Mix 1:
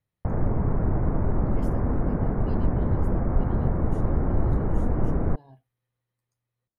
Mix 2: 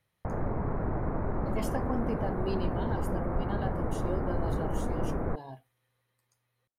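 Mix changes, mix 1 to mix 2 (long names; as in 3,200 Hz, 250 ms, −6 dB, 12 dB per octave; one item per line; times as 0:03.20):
speech +12.0 dB
master: add low-shelf EQ 320 Hz −9.5 dB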